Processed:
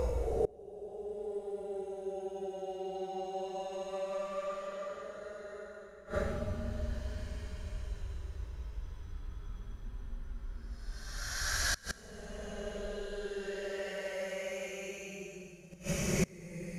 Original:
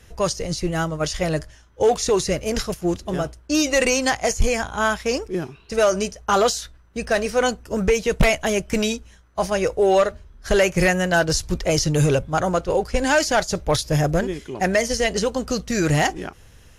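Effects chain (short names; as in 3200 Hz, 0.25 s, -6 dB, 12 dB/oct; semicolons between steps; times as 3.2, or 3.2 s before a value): Paulstretch 16×, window 0.10 s, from 9.73; flipped gate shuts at -22 dBFS, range -27 dB; gain +3.5 dB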